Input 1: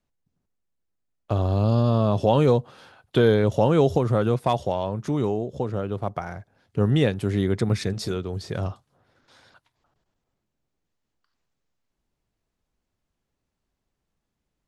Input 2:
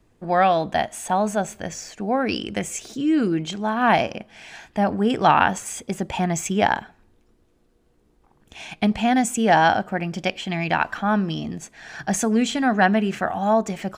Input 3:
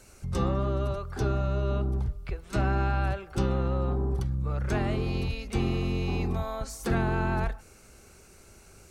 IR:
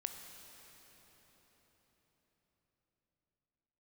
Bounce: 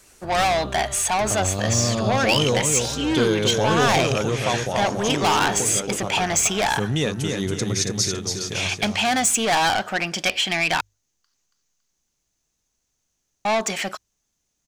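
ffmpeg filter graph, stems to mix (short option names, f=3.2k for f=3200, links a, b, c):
-filter_complex "[0:a]equalizer=f=6.3k:t=o:w=0.37:g=13.5,asoftclip=type=tanh:threshold=-8dB,volume=-3dB,asplit=3[a][b][c];[b]volume=-4.5dB[d];[1:a]asplit=2[e][f];[f]highpass=f=720:p=1,volume=26dB,asoftclip=type=tanh:threshold=-1.5dB[g];[e][g]amix=inputs=2:normalize=0,lowpass=f=5k:p=1,volume=-6dB,volume=-13dB,asplit=3[h][i][j];[h]atrim=end=10.81,asetpts=PTS-STARTPTS,afade=t=out:st=10.806:d=0.004:c=hsin[k];[i]atrim=start=10.81:end=13.45,asetpts=PTS-STARTPTS,volume=0[l];[j]atrim=start=13.45,asetpts=PTS-STARTPTS,afade=t=in:d=0.004:c=hsin[m];[k][l][m]concat=n=3:v=0:a=1[n];[2:a]volume=-6.5dB[o];[c]apad=whole_len=392770[p];[o][p]sidechaincompress=threshold=-38dB:ratio=8:attack=16:release=390[q];[d]aecho=0:1:279|558|837|1116|1395:1|0.39|0.152|0.0593|0.0231[r];[a][n][q][r]amix=inputs=4:normalize=0,highshelf=f=2.2k:g=11.5,bandreject=f=50:t=h:w=6,bandreject=f=100:t=h:w=6"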